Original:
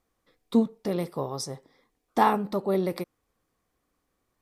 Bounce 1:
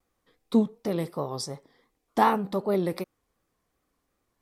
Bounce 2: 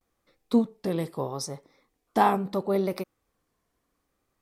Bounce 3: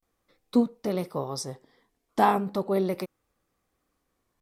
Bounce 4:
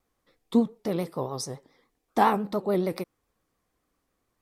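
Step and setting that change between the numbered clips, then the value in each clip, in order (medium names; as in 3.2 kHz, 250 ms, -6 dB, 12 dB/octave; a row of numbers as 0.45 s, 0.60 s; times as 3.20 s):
vibrato, rate: 2.7 Hz, 0.75 Hz, 0.37 Hz, 7.1 Hz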